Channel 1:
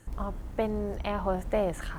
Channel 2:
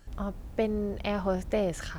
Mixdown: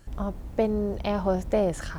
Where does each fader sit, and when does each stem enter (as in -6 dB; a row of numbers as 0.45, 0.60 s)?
-6.0, +1.0 dB; 0.00, 0.00 s